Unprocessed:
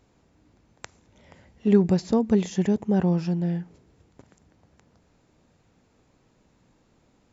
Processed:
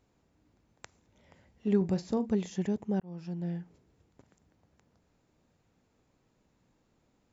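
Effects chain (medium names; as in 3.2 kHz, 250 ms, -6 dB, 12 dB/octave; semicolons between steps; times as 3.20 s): 1.77–2.30 s: doubling 42 ms -13 dB; 3.00–3.48 s: fade in; trim -8.5 dB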